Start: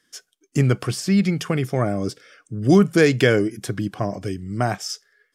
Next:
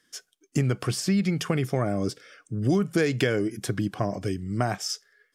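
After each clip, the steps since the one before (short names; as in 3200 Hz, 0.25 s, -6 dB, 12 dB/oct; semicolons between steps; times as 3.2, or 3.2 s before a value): compressor 5:1, threshold -19 dBFS, peak gain reduction 9.5 dB; gain -1 dB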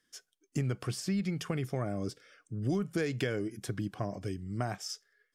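low shelf 60 Hz +9 dB; gain -9 dB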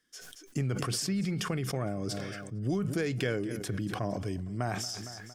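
feedback echo 0.23 s, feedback 43%, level -19 dB; sustainer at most 26 dB/s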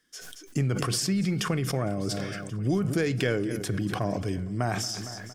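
echo 1.083 s -21.5 dB; on a send at -19 dB: reverb RT60 0.70 s, pre-delay 6 ms; on the sum: gain +4.5 dB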